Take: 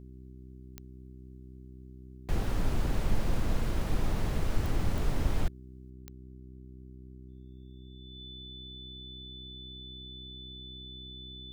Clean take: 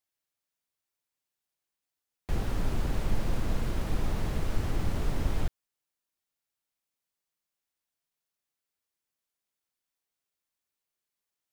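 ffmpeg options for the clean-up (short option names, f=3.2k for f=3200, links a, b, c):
-af "adeclick=t=4,bandreject=f=63.8:t=h:w=4,bandreject=f=127.6:t=h:w=4,bandreject=f=191.4:t=h:w=4,bandreject=f=255.2:t=h:w=4,bandreject=f=319:t=h:w=4,bandreject=f=382.8:t=h:w=4,bandreject=f=3.5k:w=30,asetnsamples=n=441:p=0,asendcmd='5.9 volume volume 5.5dB',volume=0dB"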